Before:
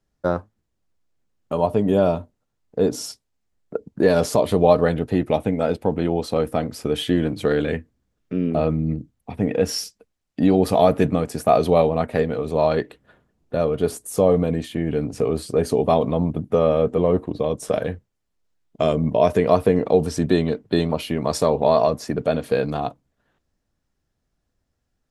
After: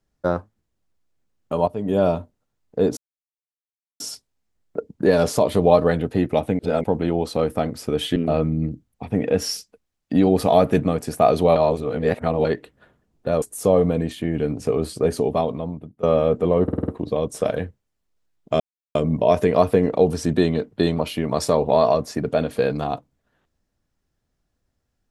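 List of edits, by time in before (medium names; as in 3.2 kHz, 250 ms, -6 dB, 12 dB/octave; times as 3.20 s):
1.68–2.05 s: fade in, from -15.5 dB
2.97 s: insert silence 1.03 s
5.56–5.81 s: reverse
7.13–8.43 s: delete
11.83–12.72 s: reverse
13.69–13.95 s: delete
15.56–16.56 s: fade out, to -23.5 dB
17.16 s: stutter 0.05 s, 6 plays
18.88 s: insert silence 0.35 s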